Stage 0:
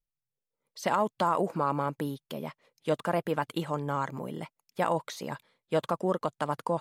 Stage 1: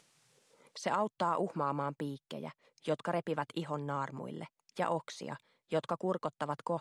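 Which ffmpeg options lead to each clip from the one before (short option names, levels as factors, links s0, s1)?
-filter_complex "[0:a]lowpass=f=9400:w=0.5412,lowpass=f=9400:w=1.3066,acrossover=split=140[s0][s1];[s1]acompressor=mode=upward:threshold=0.0158:ratio=2.5[s2];[s0][s2]amix=inputs=2:normalize=0,volume=0.531"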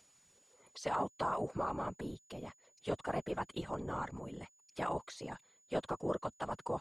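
-af "afftfilt=real='hypot(re,im)*cos(2*PI*random(0))':imag='hypot(re,im)*sin(2*PI*random(1))':win_size=512:overlap=0.75,aeval=exprs='val(0)+0.000316*sin(2*PI*6900*n/s)':c=same,volume=1.5"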